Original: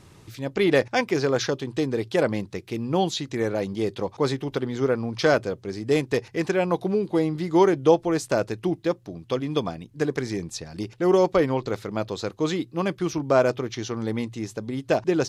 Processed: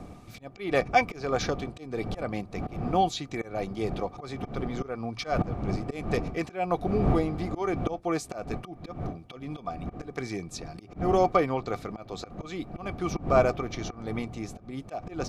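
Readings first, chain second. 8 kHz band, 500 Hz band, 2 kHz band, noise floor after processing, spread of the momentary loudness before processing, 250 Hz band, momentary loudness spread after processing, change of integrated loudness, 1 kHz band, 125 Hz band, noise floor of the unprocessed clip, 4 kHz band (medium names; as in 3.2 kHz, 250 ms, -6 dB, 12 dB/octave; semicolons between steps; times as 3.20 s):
-6.5 dB, -7.5 dB, -5.0 dB, -49 dBFS, 11 LU, -6.5 dB, 14 LU, -5.5 dB, 0.0 dB, -3.0 dB, -52 dBFS, -7.0 dB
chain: wind noise 230 Hz -28 dBFS; slow attack 221 ms; small resonant body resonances 730/1200/2300 Hz, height 14 dB, ringing for 50 ms; trim -5.5 dB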